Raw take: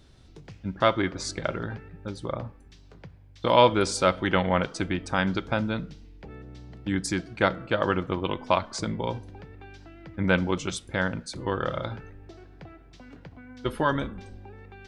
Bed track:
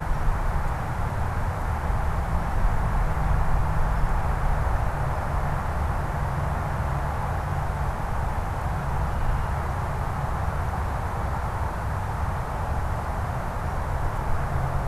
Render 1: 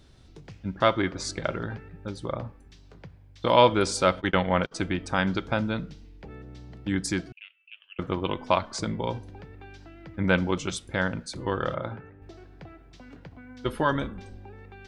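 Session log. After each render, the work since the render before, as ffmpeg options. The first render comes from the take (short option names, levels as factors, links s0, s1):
-filter_complex "[0:a]asplit=3[s0][s1][s2];[s0]afade=t=out:st=4.2:d=0.02[s3];[s1]agate=range=0.0562:threshold=0.0398:ratio=16:release=100:detection=peak,afade=t=in:st=4.2:d=0.02,afade=t=out:st=4.71:d=0.02[s4];[s2]afade=t=in:st=4.71:d=0.02[s5];[s3][s4][s5]amix=inputs=3:normalize=0,asettb=1/sr,asplit=3[s6][s7][s8];[s6]atrim=end=7.324[s9];[s7]atrim=start=7.32:end=7.99,asetpts=PTS-STARTPTS,afade=t=in:d=0.004:c=qsin,afade=t=out:st=0.666:d=0.004:c=qsin,asuperpass=centerf=2700:order=4:qfactor=7.4[s10];[s8]atrim=start=7.986[s11];[s9][s10]acrossfade=d=0.004:c1=hsin:c2=qsin[s12];[s12][s11]acrossfade=d=0.004:c1=qsin:c2=hsin,asettb=1/sr,asplit=3[s13][s14][s15];[s13]atrim=end=11.744[s16];[s14]atrim=start=11.74:end=12.22,asetpts=PTS-STARTPTS,afade=t=in:d=0.004:c=qsin,afade=t=out:st=0.476:d=0.004:c=qsin,highpass=100,lowpass=2100[s17];[s15]atrim=start=12.216[s18];[s16][s17]acrossfade=d=0.004:c1=hsin:c2=qsin[s19];[s19][s18]acrossfade=d=0.004:c1=qsin:c2=hsin"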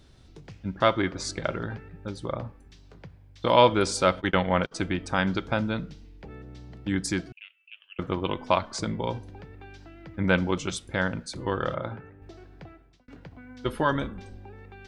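-filter_complex "[0:a]asplit=2[s0][s1];[s0]atrim=end=13.08,asetpts=PTS-STARTPTS,afade=t=out:st=12.64:d=0.44[s2];[s1]atrim=start=13.08,asetpts=PTS-STARTPTS,afade=t=in:d=0.004:c=hsin[s3];[s2][s3]concat=n=2:v=0:a=1"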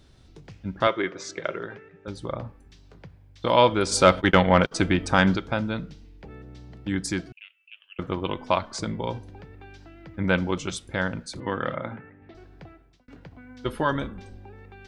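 -filter_complex "[0:a]asettb=1/sr,asplit=3[s0][s1][s2];[s0]atrim=end=0.874[s3];[s1]atrim=start=0.87:end=2.08,asetpts=PTS-STARTPTS,afade=t=in:d=0.004:c=qsin,afade=t=out:st=1.206:d=0.004:c=qsin,highpass=230,equalizer=f=250:t=q:w=4:g=-9,equalizer=f=410:t=q:w=4:g=5,equalizer=f=820:t=q:w=4:g=-6,equalizer=f=2000:t=q:w=4:g=3,equalizer=f=4500:t=q:w=4:g=-8,lowpass=f=6800:w=0.5412,lowpass=f=6800:w=1.3066[s4];[s2]atrim=start=2.076[s5];[s3][s4]acrossfade=d=0.004:c1=hsin:c2=qsin[s6];[s6][s5]acrossfade=d=0.004:c1=qsin:c2=hsin,asplit=3[s7][s8][s9];[s7]afade=t=out:st=3.91:d=0.02[s10];[s8]acontrast=63,afade=t=in:st=3.91:d=0.02,afade=t=out:st=5.35:d=0.02[s11];[s9]afade=t=in:st=5.35:d=0.02[s12];[s10][s11][s12]amix=inputs=3:normalize=0,asettb=1/sr,asplit=3[s13][s14][s15];[s13]atrim=end=11.404[s16];[s14]atrim=start=11.4:end=12.35,asetpts=PTS-STARTPTS,afade=t=in:d=0.004:c=qsin,afade=t=out:st=0.946:d=0.004:c=qsin,highpass=110,equalizer=f=240:t=q:w=4:g=6,equalizer=f=380:t=q:w=4:g=-4,equalizer=f=2000:t=q:w=4:g=8,lowpass=f=3600:w=0.5412,lowpass=f=3600:w=1.3066[s17];[s15]atrim=start=12.346[s18];[s16][s17]acrossfade=d=0.004:c1=hsin:c2=qsin[s19];[s19][s18]acrossfade=d=0.004:c1=qsin:c2=hsin"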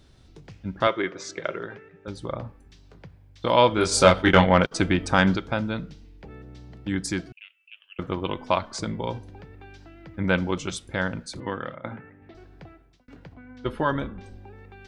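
-filter_complex "[0:a]asettb=1/sr,asplit=3[s0][s1][s2];[s0]atrim=end=3.754[s3];[s1]atrim=start=3.75:end=4.47,asetpts=PTS-STARTPTS,afade=t=in:d=0.004:c=qsin,afade=t=out:st=0.716:d=0.004:c=qsin,asplit=2[s4][s5];[s5]adelay=23,volume=0.708[s6];[s4][s6]amix=inputs=2:normalize=0,atrim=end_sample=31752[s7];[s2]atrim=start=4.466[s8];[s3][s7]acrossfade=d=0.004:c1=hsin:c2=qsin[s9];[s9][s8]acrossfade=d=0.004:c1=qsin:c2=hsin,asettb=1/sr,asplit=3[s10][s11][s12];[s10]atrim=end=13.344[s13];[s11]atrim=start=13.34:end=14.24,asetpts=PTS-STARTPTS,afade=t=in:d=0.004:c=qsin,afade=t=out:st=0.896:d=0.004:c=qsin,aemphasis=mode=reproduction:type=50fm[s14];[s12]atrim=start=14.236[s15];[s13][s14]acrossfade=d=0.004:c1=hsin:c2=qsin[s16];[s16][s15]acrossfade=d=0.004:c1=qsin:c2=hsin,asplit=2[s17][s18];[s17]atrim=end=11.84,asetpts=PTS-STARTPTS,afade=t=out:st=11.4:d=0.44:silence=0.188365[s19];[s18]atrim=start=11.84,asetpts=PTS-STARTPTS,afade=t=in:d=0.004:c=hsin:silence=0.188365[s20];[s19][s20]concat=n=2:v=0:a=1"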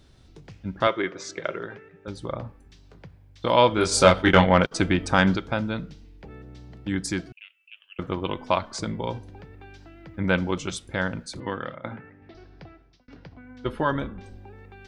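-filter_complex "[0:a]asettb=1/sr,asplit=3[s0][s1][s2];[s0]atrim=end=11.404[s3];[s1]atrim=start=11.4:end=13.39,asetpts=PTS-STARTPTS,afade=t=in:d=0.004:c=qsin,afade=t=out:st=1.986:d=0.004:c=qsin,highshelf=f=6500:t=q:w=3:g=-7[s4];[s2]atrim=start=13.386[s5];[s3][s4]acrossfade=d=0.004:c1=hsin:c2=qsin[s6];[s6][s5]acrossfade=d=0.004:c1=qsin:c2=hsin"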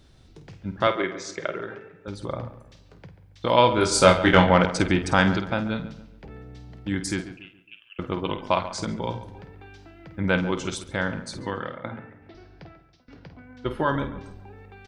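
-filter_complex "[0:a]asplit=2[s0][s1];[s1]adelay=50,volume=0.299[s2];[s0][s2]amix=inputs=2:normalize=0,asplit=2[s3][s4];[s4]adelay=139,lowpass=f=2500:p=1,volume=0.211,asplit=2[s5][s6];[s6]adelay=139,lowpass=f=2500:p=1,volume=0.38,asplit=2[s7][s8];[s8]adelay=139,lowpass=f=2500:p=1,volume=0.38,asplit=2[s9][s10];[s10]adelay=139,lowpass=f=2500:p=1,volume=0.38[s11];[s3][s5][s7][s9][s11]amix=inputs=5:normalize=0"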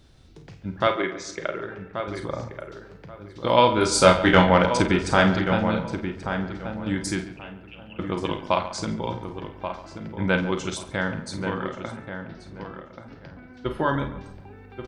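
-filter_complex "[0:a]asplit=2[s0][s1];[s1]adelay=37,volume=0.282[s2];[s0][s2]amix=inputs=2:normalize=0,asplit=2[s3][s4];[s4]adelay=1132,lowpass=f=2000:p=1,volume=0.398,asplit=2[s5][s6];[s6]adelay=1132,lowpass=f=2000:p=1,volume=0.22,asplit=2[s7][s8];[s8]adelay=1132,lowpass=f=2000:p=1,volume=0.22[s9];[s5][s7][s9]amix=inputs=3:normalize=0[s10];[s3][s10]amix=inputs=2:normalize=0"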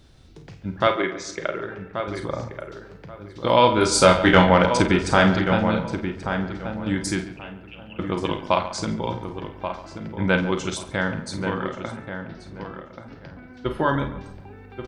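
-af "volume=1.26,alimiter=limit=0.708:level=0:latency=1"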